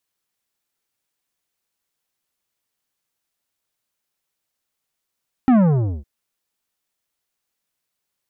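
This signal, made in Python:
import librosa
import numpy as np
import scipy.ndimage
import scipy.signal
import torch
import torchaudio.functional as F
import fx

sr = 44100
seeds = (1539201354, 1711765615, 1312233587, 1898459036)

y = fx.sub_drop(sr, level_db=-11.5, start_hz=270.0, length_s=0.56, drive_db=11.5, fade_s=0.49, end_hz=65.0)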